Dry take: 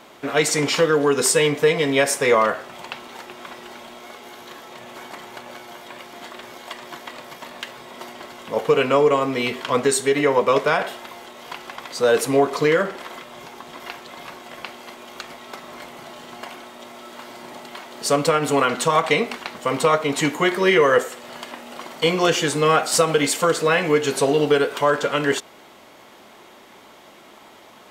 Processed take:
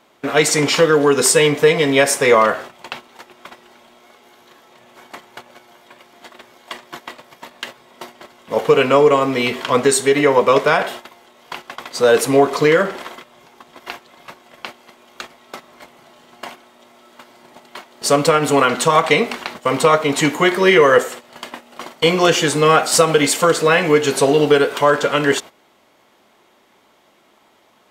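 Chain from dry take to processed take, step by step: gate -35 dBFS, range -13 dB; gain +4.5 dB

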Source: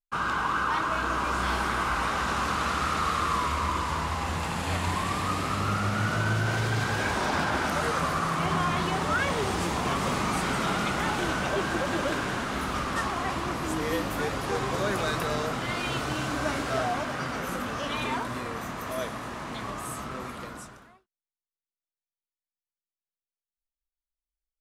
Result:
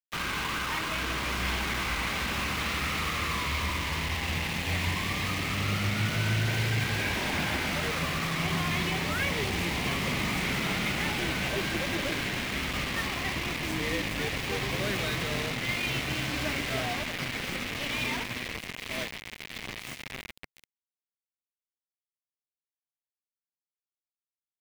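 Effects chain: delta modulation 64 kbps, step -38 dBFS; bit-crush 5-bit; EQ curve 140 Hz 0 dB, 1400 Hz -9 dB, 2100 Hz +5 dB, 8100 Hz -9 dB

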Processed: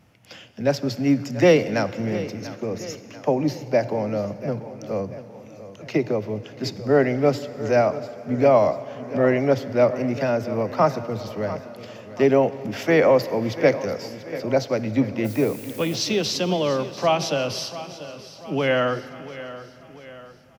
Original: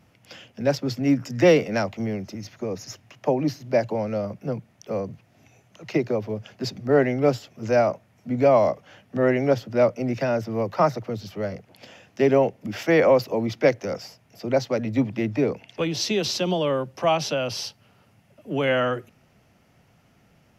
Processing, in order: on a send: feedback echo 0.689 s, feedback 49%, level -15 dB; 15.24–15.94 on the sum: added noise blue -44 dBFS; plate-style reverb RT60 3.4 s, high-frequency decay 0.95×, DRR 14 dB; gain +1 dB

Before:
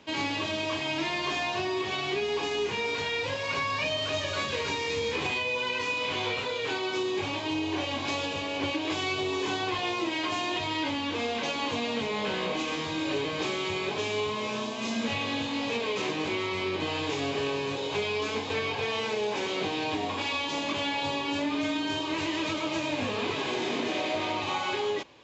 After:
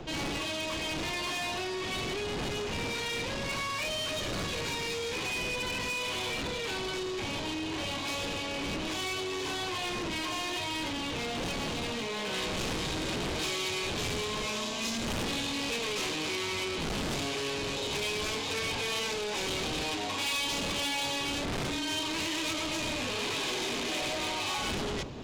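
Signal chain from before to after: wind noise 370 Hz -31 dBFS; soft clip -32.5 dBFS, distortion -5 dB; high shelf 3000 Hz +6 dB, from 12.33 s +11.5 dB

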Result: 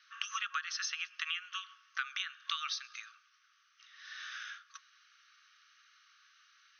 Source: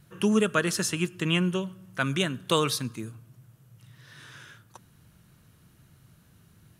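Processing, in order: FFT band-pass 1100–6400 Hz; compressor 10:1, threshold -38 dBFS, peak gain reduction 16.5 dB; gain +4.5 dB

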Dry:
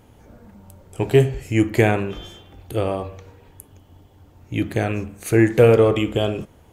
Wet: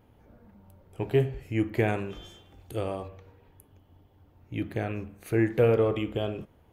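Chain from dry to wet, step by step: bell 7500 Hz -12.5 dB 1.2 oct, from 1.88 s +2 dB, from 3.08 s -11.5 dB; gain -9 dB

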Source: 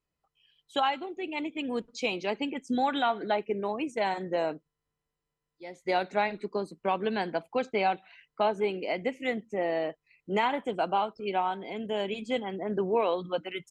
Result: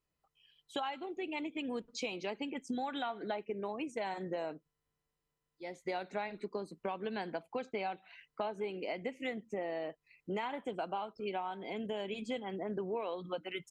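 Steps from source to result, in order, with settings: compressor 4:1, threshold -35 dBFS, peak gain reduction 12 dB; gain -1 dB

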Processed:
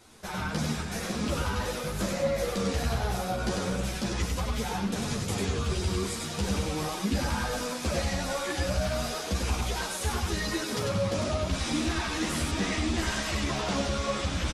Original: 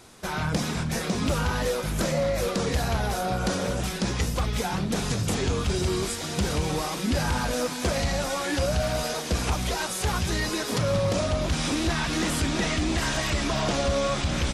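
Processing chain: on a send: echo 98 ms -3.5 dB; on the sum: ensemble effect; gain -2 dB

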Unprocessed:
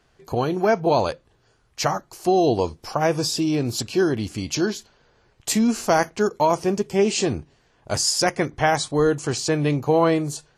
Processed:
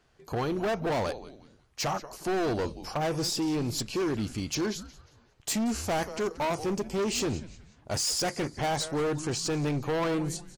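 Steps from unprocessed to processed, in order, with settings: frequency-shifting echo 0.18 s, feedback 35%, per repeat -150 Hz, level -18 dB; overloaded stage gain 21 dB; gain -4.5 dB

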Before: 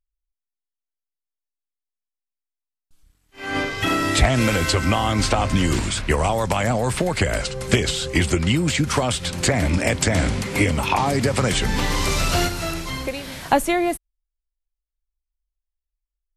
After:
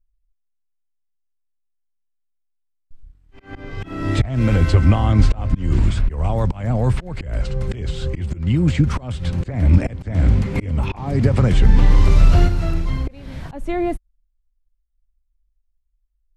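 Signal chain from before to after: auto swell 0.302 s; RIAA curve playback; gain -3.5 dB

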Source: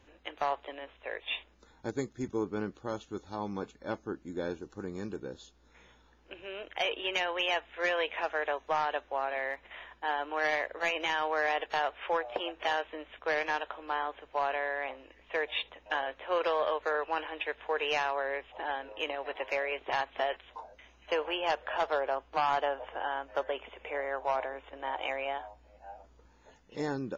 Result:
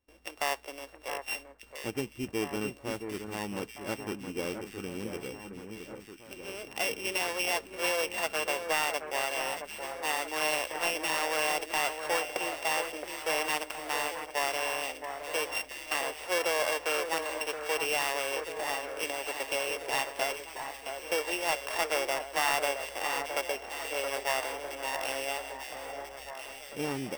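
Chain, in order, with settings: sample sorter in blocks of 16 samples; gate with hold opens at -50 dBFS; echo with dull and thin repeats by turns 0.67 s, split 1900 Hz, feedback 75%, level -7 dB

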